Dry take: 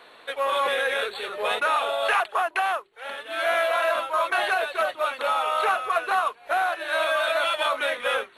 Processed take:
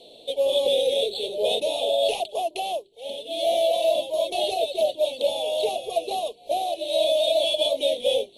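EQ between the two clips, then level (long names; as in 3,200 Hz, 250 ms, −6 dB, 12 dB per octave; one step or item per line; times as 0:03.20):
Chebyshev band-stop filter 630–3,300 Hz, order 3
Bessel low-pass filter 11,000 Hz
+6.5 dB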